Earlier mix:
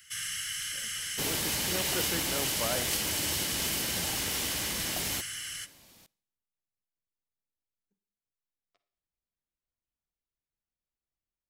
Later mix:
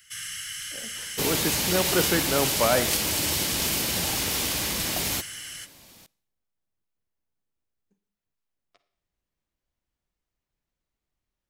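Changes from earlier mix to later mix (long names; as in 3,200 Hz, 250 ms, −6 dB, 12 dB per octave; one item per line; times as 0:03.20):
speech +12.0 dB
second sound +6.0 dB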